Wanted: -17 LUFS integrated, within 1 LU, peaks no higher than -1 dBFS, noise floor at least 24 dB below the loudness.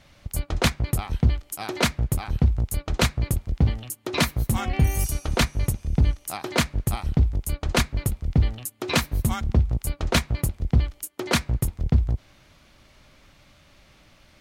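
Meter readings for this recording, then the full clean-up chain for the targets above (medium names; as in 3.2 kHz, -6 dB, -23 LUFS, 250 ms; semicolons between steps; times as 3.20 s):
loudness -25.0 LUFS; peak level -10.5 dBFS; loudness target -17.0 LUFS
-> trim +8 dB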